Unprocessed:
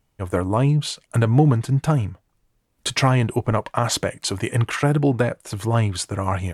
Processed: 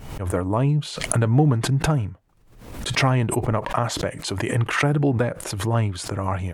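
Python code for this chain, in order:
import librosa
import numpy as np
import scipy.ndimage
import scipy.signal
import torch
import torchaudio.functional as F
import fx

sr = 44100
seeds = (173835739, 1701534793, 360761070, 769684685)

y = fx.high_shelf(x, sr, hz=3100.0, db=-6.5)
y = fx.pre_swell(y, sr, db_per_s=64.0)
y = y * 10.0 ** (-2.0 / 20.0)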